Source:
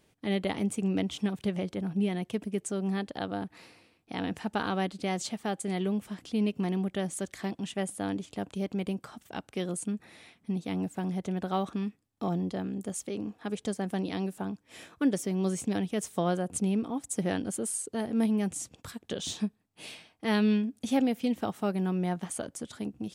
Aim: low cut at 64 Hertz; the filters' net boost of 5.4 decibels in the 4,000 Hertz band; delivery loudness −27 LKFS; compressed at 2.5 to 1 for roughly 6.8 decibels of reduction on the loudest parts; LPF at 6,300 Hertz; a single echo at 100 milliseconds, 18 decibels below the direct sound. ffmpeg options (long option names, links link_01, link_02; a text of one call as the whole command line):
ffmpeg -i in.wav -af "highpass=64,lowpass=6300,equalizer=frequency=4000:width_type=o:gain=7.5,acompressor=threshold=-31dB:ratio=2.5,aecho=1:1:100:0.126,volume=8.5dB" out.wav